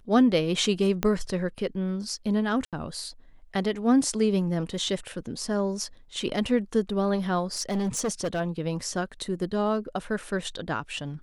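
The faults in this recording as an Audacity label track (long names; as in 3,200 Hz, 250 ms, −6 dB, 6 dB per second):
1.030000	1.030000	click −11 dBFS
2.650000	2.730000	drop-out 77 ms
7.570000	8.410000	clipping −23.5 dBFS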